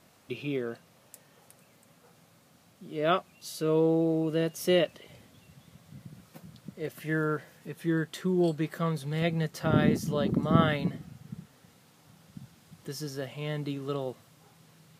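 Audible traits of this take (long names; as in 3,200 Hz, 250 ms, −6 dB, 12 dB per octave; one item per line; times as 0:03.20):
background noise floor −61 dBFS
spectral slope −6.0 dB per octave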